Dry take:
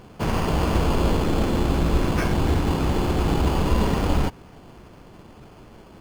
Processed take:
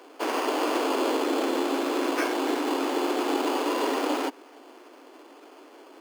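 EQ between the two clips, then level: steep high-pass 260 Hz 96 dB/oct; 0.0 dB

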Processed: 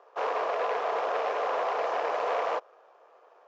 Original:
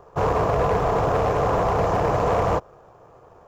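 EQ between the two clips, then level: HPF 550 Hz 24 dB/oct; air absorption 210 m; bell 860 Hz -10.5 dB 2.2 oct; +4.5 dB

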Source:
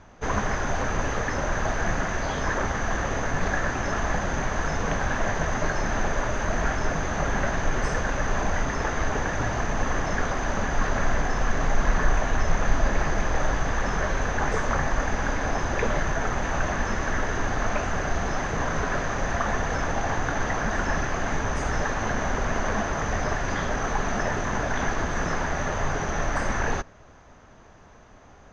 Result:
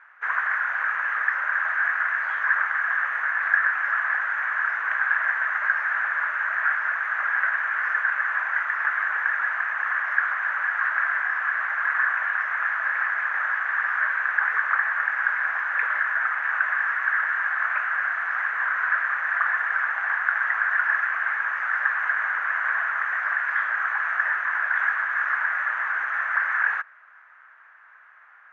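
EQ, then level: Butterworth band-pass 1600 Hz, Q 1.2; bell 1600 Hz +14 dB 0.89 oct; -3.0 dB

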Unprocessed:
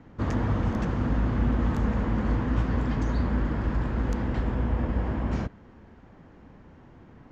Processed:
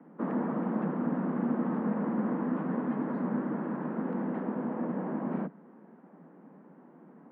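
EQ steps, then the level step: steep high-pass 160 Hz 96 dB/oct; LPF 1400 Hz 12 dB/oct; air absorption 320 m; 0.0 dB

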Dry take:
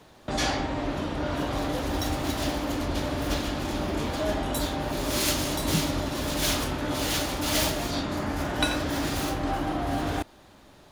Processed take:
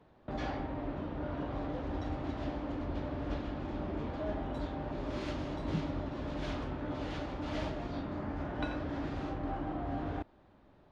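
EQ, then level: tape spacing loss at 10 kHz 37 dB; -7.0 dB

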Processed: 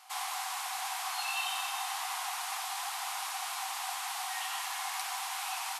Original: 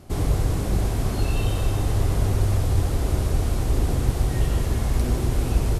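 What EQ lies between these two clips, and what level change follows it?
rippled Chebyshev high-pass 740 Hz, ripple 3 dB; +3.0 dB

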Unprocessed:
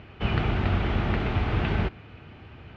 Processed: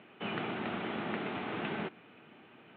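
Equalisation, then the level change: HPF 190 Hz 24 dB/oct; steep low-pass 3900 Hz 72 dB/oct; -6.5 dB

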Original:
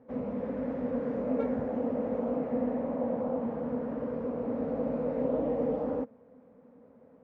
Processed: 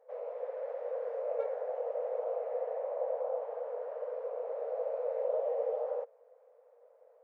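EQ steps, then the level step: brick-wall FIR high-pass 420 Hz; bell 620 Hz +9 dB 0.68 oct; -7.0 dB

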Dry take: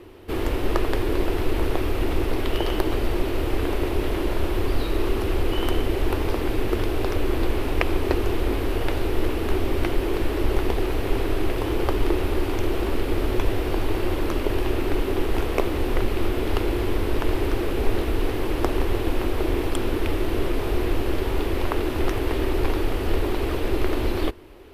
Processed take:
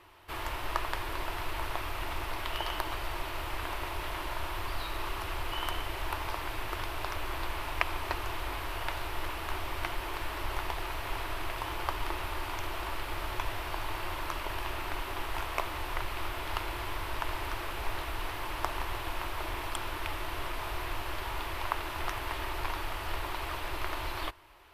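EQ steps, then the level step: bell 240 Hz -15 dB 0.26 oct; resonant low shelf 600 Hz -9.5 dB, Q 3; bell 780 Hz -12.5 dB 0.2 oct; -4.5 dB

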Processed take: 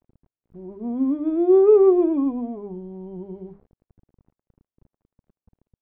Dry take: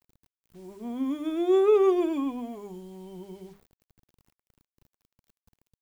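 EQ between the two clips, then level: Bessel low-pass 570 Hz, order 2; +8.0 dB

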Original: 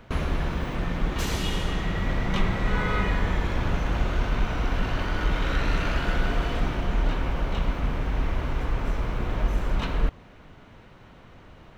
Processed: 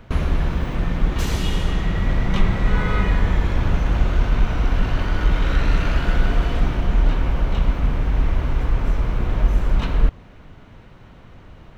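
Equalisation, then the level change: low shelf 180 Hz +6.5 dB; +1.5 dB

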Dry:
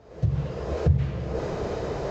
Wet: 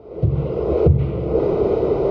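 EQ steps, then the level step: Butterworth band-stop 1700 Hz, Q 3.3; air absorption 260 m; bell 380 Hz +11.5 dB 0.99 oct; +5.0 dB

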